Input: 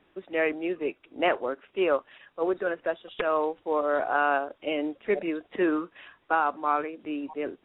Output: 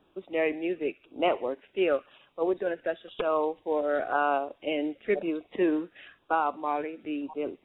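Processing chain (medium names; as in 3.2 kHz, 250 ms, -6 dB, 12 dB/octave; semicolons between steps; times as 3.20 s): feedback echo behind a high-pass 66 ms, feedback 51%, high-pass 1.7 kHz, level -19.5 dB; LFO notch saw down 0.97 Hz 890–2100 Hz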